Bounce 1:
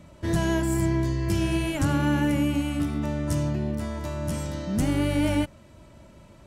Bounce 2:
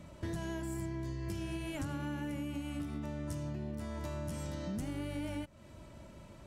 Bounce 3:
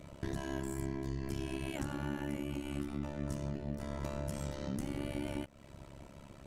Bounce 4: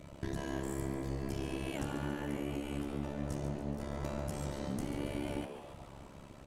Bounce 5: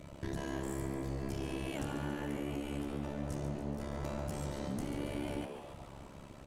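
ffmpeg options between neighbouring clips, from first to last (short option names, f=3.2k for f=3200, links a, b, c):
-af "acompressor=threshold=-33dB:ratio=12,volume=-2.5dB"
-af "tremolo=f=69:d=1,volume=4.5dB"
-filter_complex "[0:a]asplit=8[a][b][c][d][e][f][g][h];[b]adelay=141,afreqshift=140,volume=-10dB[i];[c]adelay=282,afreqshift=280,volume=-14.7dB[j];[d]adelay=423,afreqshift=420,volume=-19.5dB[k];[e]adelay=564,afreqshift=560,volume=-24.2dB[l];[f]adelay=705,afreqshift=700,volume=-28.9dB[m];[g]adelay=846,afreqshift=840,volume=-33.7dB[n];[h]adelay=987,afreqshift=980,volume=-38.4dB[o];[a][i][j][k][l][m][n][o]amix=inputs=8:normalize=0"
-af "asoftclip=type=tanh:threshold=-29.5dB,volume=1dB"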